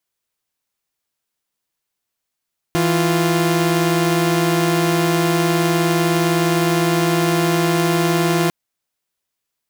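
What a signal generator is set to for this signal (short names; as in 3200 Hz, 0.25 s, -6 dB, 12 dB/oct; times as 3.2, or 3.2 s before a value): chord E3/F4 saw, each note -15 dBFS 5.75 s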